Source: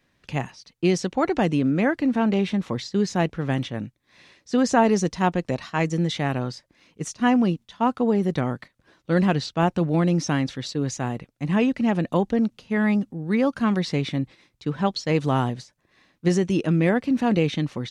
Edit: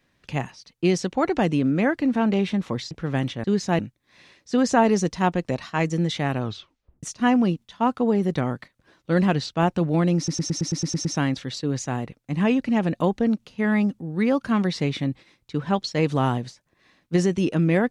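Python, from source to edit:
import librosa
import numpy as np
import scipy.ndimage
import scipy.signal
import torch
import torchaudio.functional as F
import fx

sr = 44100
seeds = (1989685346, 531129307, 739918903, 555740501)

y = fx.edit(x, sr, fx.move(start_s=2.91, length_s=0.35, to_s=3.79),
    fx.tape_stop(start_s=6.42, length_s=0.61),
    fx.stutter(start_s=10.17, slice_s=0.11, count=9), tone=tone)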